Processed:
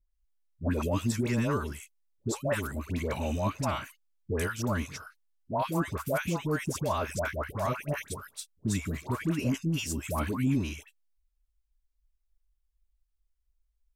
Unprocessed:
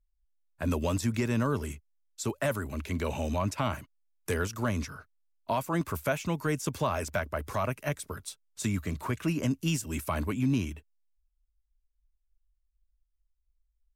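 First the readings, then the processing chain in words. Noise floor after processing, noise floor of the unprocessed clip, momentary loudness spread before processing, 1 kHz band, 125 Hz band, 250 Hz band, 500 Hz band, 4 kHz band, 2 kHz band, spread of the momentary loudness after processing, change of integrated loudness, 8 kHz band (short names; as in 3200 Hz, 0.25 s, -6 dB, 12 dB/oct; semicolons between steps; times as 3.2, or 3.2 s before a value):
-77 dBFS, -77 dBFS, 11 LU, 0.0 dB, 0.0 dB, 0.0 dB, 0.0 dB, 0.0 dB, 0.0 dB, 11 LU, 0.0 dB, 0.0 dB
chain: dispersion highs, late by 0.114 s, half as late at 910 Hz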